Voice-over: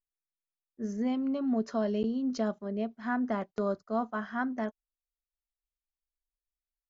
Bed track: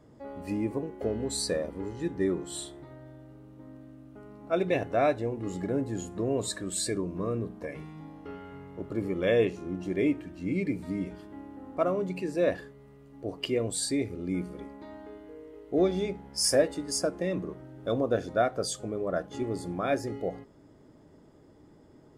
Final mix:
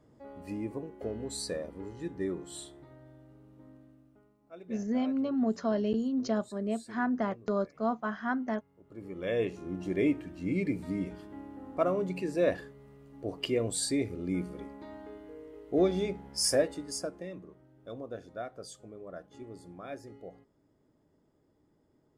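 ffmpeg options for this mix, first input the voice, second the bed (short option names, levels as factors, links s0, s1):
-filter_complex "[0:a]adelay=3900,volume=1.06[s0];[1:a]volume=5.31,afade=t=out:st=3.66:d=0.7:silence=0.16788,afade=t=in:st=8.83:d=1.09:silence=0.0944061,afade=t=out:st=16.28:d=1.11:silence=0.223872[s1];[s0][s1]amix=inputs=2:normalize=0"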